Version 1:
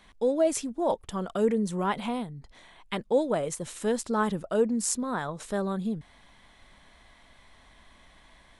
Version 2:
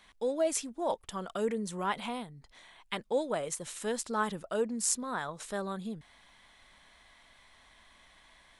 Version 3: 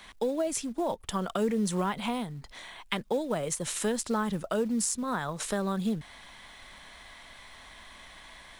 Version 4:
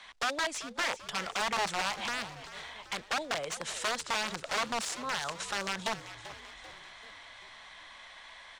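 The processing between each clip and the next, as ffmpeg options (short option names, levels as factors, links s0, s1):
-af "tiltshelf=f=650:g=-4.5,volume=0.562"
-filter_complex "[0:a]acrossover=split=220[s0][s1];[s1]acompressor=threshold=0.0112:ratio=6[s2];[s0][s2]amix=inputs=2:normalize=0,asplit=2[s3][s4];[s4]acrusher=bits=4:mode=log:mix=0:aa=0.000001,volume=0.562[s5];[s3][s5]amix=inputs=2:normalize=0,volume=2.11"
-filter_complex "[0:a]aeval=exprs='(mod(15*val(0)+1,2)-1)/15':c=same,acrossover=split=540 7600:gain=0.224 1 0.0631[s0][s1][s2];[s0][s1][s2]amix=inputs=3:normalize=0,asplit=6[s3][s4][s5][s6][s7][s8];[s4]adelay=389,afreqshift=-71,volume=0.2[s9];[s5]adelay=778,afreqshift=-142,volume=0.107[s10];[s6]adelay=1167,afreqshift=-213,volume=0.0582[s11];[s7]adelay=1556,afreqshift=-284,volume=0.0313[s12];[s8]adelay=1945,afreqshift=-355,volume=0.017[s13];[s3][s9][s10][s11][s12][s13]amix=inputs=6:normalize=0"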